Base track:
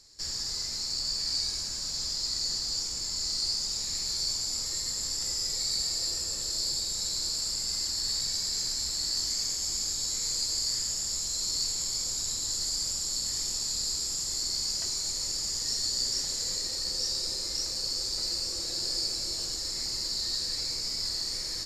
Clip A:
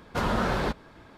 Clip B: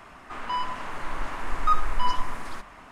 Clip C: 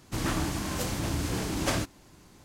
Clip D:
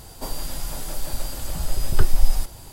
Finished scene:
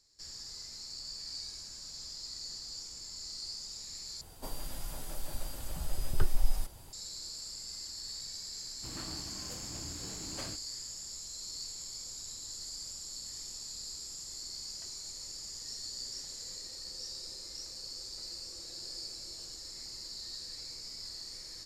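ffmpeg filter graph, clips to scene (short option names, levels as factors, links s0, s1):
-filter_complex "[0:a]volume=0.251,asplit=2[s0][s1];[s0]atrim=end=4.214[s2];[4:a]atrim=end=2.72,asetpts=PTS-STARTPTS,volume=0.299[s3];[s1]atrim=start=6.926[s4];[3:a]atrim=end=2.44,asetpts=PTS-STARTPTS,volume=0.158,afade=t=in:d=0.004:c=hsin,afade=t=out:st=2.436:d=0.004:c=hsin,adelay=8710[s5];[s2][s3]acrossfade=d=0.004:c1=hsin:c2=hsin[s6];[s6][s4]acrossfade=d=0.004:c1=hsin:c2=hsin[s7];[s7][s5]amix=inputs=2:normalize=0"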